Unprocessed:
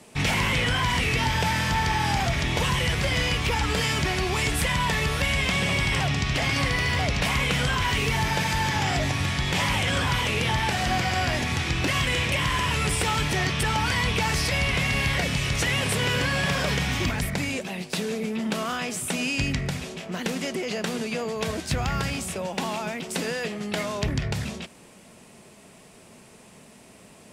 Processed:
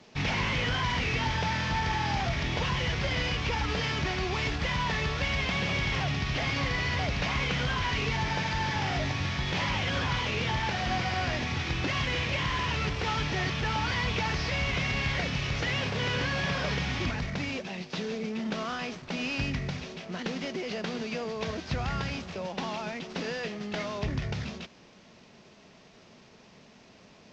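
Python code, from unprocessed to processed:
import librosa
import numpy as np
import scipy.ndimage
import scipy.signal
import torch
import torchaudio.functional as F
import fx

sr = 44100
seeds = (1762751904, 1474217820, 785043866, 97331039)

y = fx.cvsd(x, sr, bps=32000)
y = y * 10.0 ** (-4.5 / 20.0)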